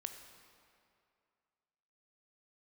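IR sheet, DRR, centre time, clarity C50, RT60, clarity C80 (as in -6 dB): 6.0 dB, 36 ms, 7.0 dB, 2.4 s, 8.0 dB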